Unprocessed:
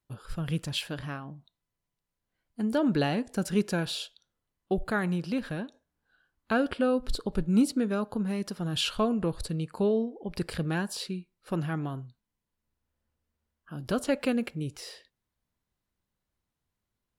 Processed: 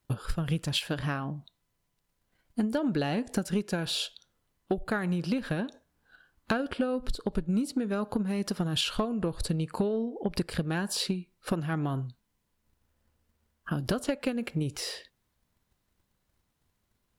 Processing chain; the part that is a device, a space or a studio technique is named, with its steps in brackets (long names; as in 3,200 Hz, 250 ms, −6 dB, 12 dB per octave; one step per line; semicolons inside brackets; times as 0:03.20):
drum-bus smash (transient designer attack +8 dB, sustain +1 dB; downward compressor 6 to 1, threshold −33 dBFS, peak gain reduction 17 dB; soft clipping −24 dBFS, distortion −22 dB)
level +7.5 dB